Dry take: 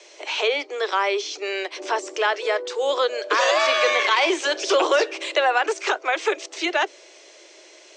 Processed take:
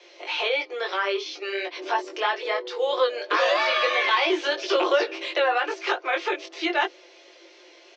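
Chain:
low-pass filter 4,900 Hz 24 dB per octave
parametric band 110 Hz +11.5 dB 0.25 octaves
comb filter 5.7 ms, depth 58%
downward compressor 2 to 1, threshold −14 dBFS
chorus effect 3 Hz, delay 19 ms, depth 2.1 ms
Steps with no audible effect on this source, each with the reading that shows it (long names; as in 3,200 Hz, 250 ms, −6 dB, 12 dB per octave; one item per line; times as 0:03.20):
parametric band 110 Hz: nothing at its input below 270 Hz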